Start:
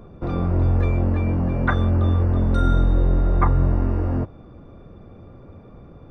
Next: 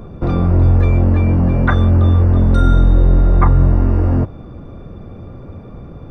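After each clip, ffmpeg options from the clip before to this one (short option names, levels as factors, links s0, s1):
-filter_complex "[0:a]bass=f=250:g=3,treble=f=4000:g=2,asplit=2[s0][s1];[s1]alimiter=limit=0.133:level=0:latency=1,volume=1.12[s2];[s0][s2]amix=inputs=2:normalize=0,volume=1.19"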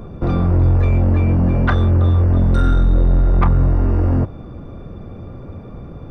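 -af "asoftclip=type=tanh:threshold=0.422"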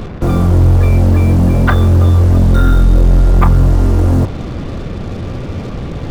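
-af "areverse,acompressor=mode=upward:threshold=0.126:ratio=2.5,areverse,acrusher=bits=5:mix=0:aa=0.5,volume=1.78"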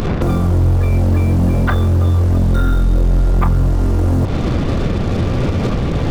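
-af "acompressor=mode=upward:threshold=0.316:ratio=2.5,alimiter=limit=0.237:level=0:latency=1:release=84,volume=1.58"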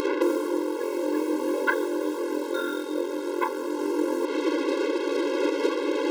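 -af "afftfilt=real='re*eq(mod(floor(b*sr/1024/280),2),1)':imag='im*eq(mod(floor(b*sr/1024/280),2),1)':win_size=1024:overlap=0.75"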